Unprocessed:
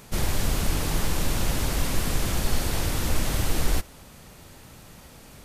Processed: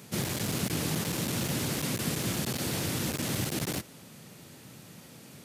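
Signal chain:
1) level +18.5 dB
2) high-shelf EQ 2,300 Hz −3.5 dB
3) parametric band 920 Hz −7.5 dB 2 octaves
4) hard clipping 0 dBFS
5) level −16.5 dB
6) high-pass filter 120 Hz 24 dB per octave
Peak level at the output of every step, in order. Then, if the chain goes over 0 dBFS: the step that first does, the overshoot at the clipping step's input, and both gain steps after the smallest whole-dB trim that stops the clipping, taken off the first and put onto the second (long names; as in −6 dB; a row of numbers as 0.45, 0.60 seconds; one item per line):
+8.5, +8.0, +8.0, 0.0, −16.5, −17.5 dBFS
step 1, 8.0 dB
step 1 +10.5 dB, step 5 −8.5 dB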